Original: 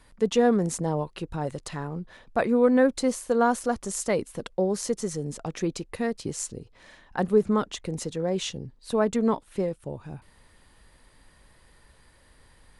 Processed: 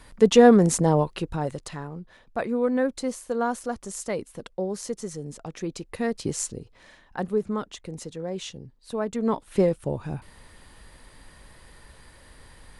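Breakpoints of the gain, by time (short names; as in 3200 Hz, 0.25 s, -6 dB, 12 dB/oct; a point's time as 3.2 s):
0.99 s +7 dB
1.97 s -4 dB
5.64 s -4 dB
6.29 s +4 dB
7.42 s -5 dB
9.12 s -5 dB
9.59 s +7 dB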